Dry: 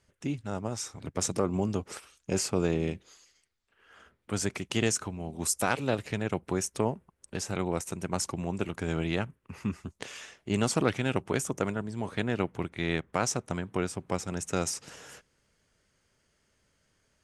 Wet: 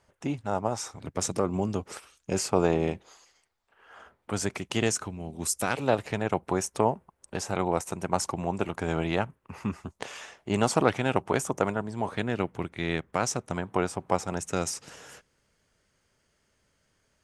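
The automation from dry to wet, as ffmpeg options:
-af "asetnsamples=n=441:p=0,asendcmd='0.91 equalizer g 3;2.52 equalizer g 12.5;4.31 equalizer g 5;5.05 equalizer g -1.5;5.77 equalizer g 9;12.17 equalizer g 2;13.56 equalizer g 10;14.39 equalizer g 2',equalizer=f=820:t=o:w=1.4:g=11.5"

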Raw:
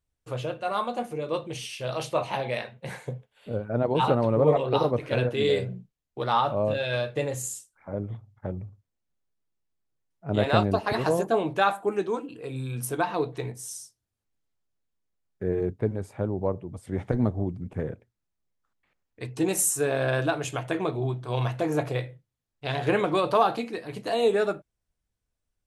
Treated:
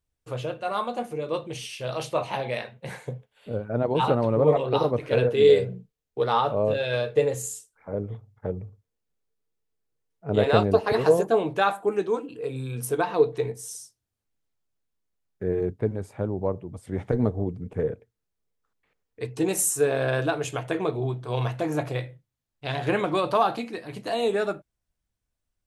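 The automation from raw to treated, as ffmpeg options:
-af "asetnsamples=n=441:p=0,asendcmd='5.09 equalizer g 13.5;11.23 equalizer g 5.5;12.37 equalizer g 12;13.75 equalizer g 2;17.12 equalizer g 12;19.25 equalizer g 6;21.54 equalizer g -4',equalizer=f=450:t=o:w=0.2:g=2"

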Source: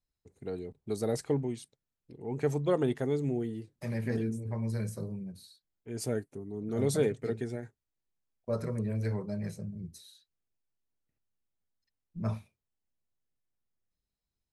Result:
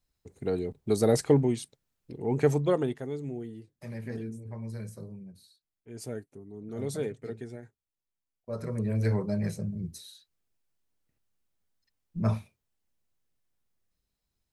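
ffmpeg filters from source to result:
-af "volume=19dB,afade=t=out:st=2.28:d=0.7:silence=0.223872,afade=t=in:st=8.49:d=0.61:silence=0.281838"

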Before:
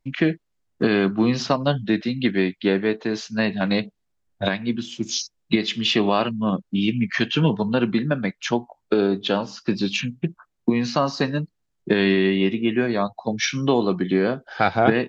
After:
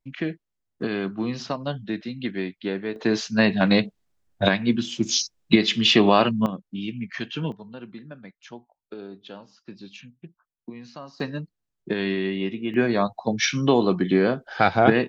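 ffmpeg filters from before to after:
-af "asetnsamples=n=441:p=0,asendcmd='2.96 volume volume 3dB;6.46 volume volume -9.5dB;7.52 volume volume -19dB;11.2 volume volume -7dB;12.74 volume volume 0.5dB',volume=-8dB"

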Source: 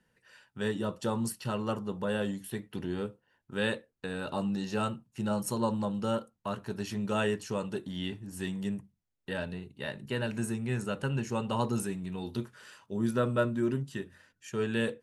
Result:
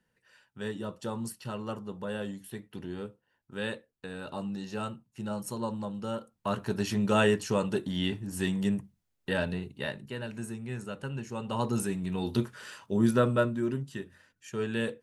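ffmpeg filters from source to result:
-af "volume=17dB,afade=t=in:st=6.17:d=0.42:silence=0.334965,afade=t=out:st=9.7:d=0.42:silence=0.298538,afade=t=in:st=11.35:d=1:silence=0.266073,afade=t=out:st=12.93:d=0.66:silence=0.421697"

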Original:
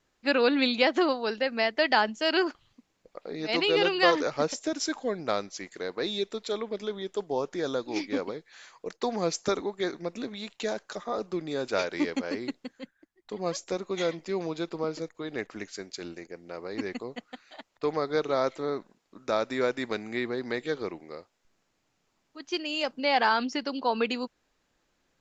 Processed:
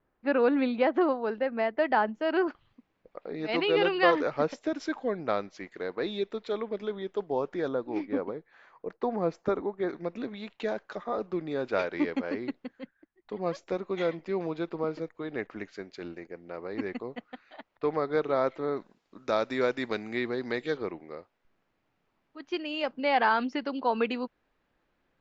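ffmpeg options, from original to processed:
-af "asetnsamples=n=441:p=0,asendcmd='2.48 lowpass f 2500;7.68 lowpass f 1400;9.89 lowpass f 2500;18.77 lowpass f 5000;20.77 lowpass f 2600',lowpass=1.4k"

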